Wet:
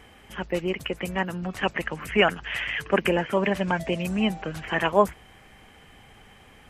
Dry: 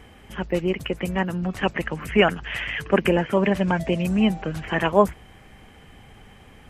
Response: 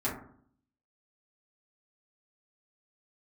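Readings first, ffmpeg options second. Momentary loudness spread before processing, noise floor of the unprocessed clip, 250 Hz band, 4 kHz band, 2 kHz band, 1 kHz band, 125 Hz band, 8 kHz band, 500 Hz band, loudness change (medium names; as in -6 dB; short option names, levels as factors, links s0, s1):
8 LU, -49 dBFS, -5.0 dB, 0.0 dB, -0.5 dB, -1.0 dB, -5.5 dB, 0.0 dB, -3.0 dB, -3.0 dB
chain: -af "lowshelf=f=430:g=-6.5"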